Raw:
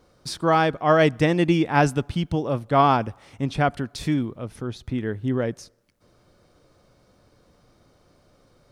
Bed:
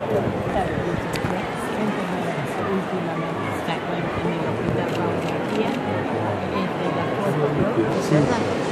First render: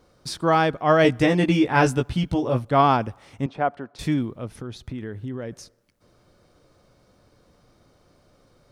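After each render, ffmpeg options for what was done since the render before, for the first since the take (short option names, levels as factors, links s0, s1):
-filter_complex "[0:a]asettb=1/sr,asplit=3[s0][s1][s2];[s0]atrim=end=1.034[s3];[s1]atrim=start=1.03:end=2.65,asetpts=PTS-STARTPTS,afade=t=in:d=0.004:c=qsin,afade=t=out:st=1.616:d=0.004:c=qsin,asplit=2[s4][s5];[s5]adelay=16,volume=0.708[s6];[s4][s6]amix=inputs=2:normalize=0,atrim=end_sample=71442[s7];[s2]atrim=start=2.646[s8];[s3][s7]acrossfade=d=0.004:c1=hsin:c2=qsin[s9];[s9][s8]acrossfade=d=0.004:c1=qsin:c2=hsin,asettb=1/sr,asplit=3[s10][s11][s12];[s10]atrim=end=3.464[s13];[s11]atrim=start=3.46:end=3.99,asetpts=PTS-STARTPTS,afade=t=in:d=0.004:c=qsin,afade=t=out:st=0.526:d=0.004:c=qsin,bandpass=f=710:t=q:w=0.84[s14];[s12]atrim=start=3.986[s15];[s13][s14]acrossfade=d=0.004:c1=hsin:c2=qsin[s16];[s16][s15]acrossfade=d=0.004:c1=qsin:c2=hsin,asettb=1/sr,asplit=3[s17][s18][s19];[s17]atrim=end=4.544[s20];[s18]atrim=start=4.54:end=5.52,asetpts=PTS-STARTPTS,afade=t=in:d=0.004:c=qsin,afade=t=out:st=0.976:d=0.004:c=qsin,acompressor=threshold=0.0355:ratio=4:attack=3.2:release=140:knee=1:detection=peak[s21];[s19]atrim=start=5.516[s22];[s20][s21]acrossfade=d=0.004:c1=hsin:c2=qsin[s23];[s23][s22]acrossfade=d=0.004:c1=qsin:c2=hsin"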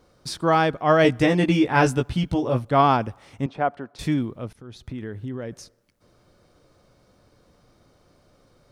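-filter_complex "[0:a]asplit=2[s0][s1];[s0]atrim=end=4.53,asetpts=PTS-STARTPTS,afade=t=out:st=4.526:d=0.004:c=hsin:silence=0.125893[s2];[s1]atrim=start=4.53,asetpts=PTS-STARTPTS,afade=t=in:d=0.55:c=qsin:silence=0.125893[s3];[s2][s3]concat=n=2:v=0:a=1"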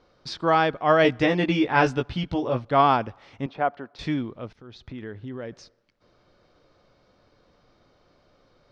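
-af "lowpass=f=5100:w=0.5412,lowpass=f=5100:w=1.3066,equalizer=f=92:w=0.33:g=-6"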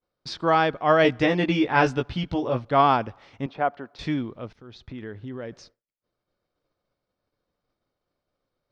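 -af "agate=range=0.0224:threshold=0.00398:ratio=3:detection=peak"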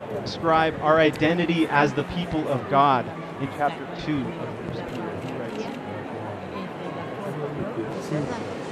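-filter_complex "[1:a]volume=0.355[s0];[0:a][s0]amix=inputs=2:normalize=0"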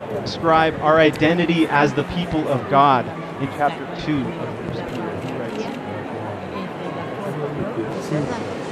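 -af "volume=1.68,alimiter=limit=0.708:level=0:latency=1"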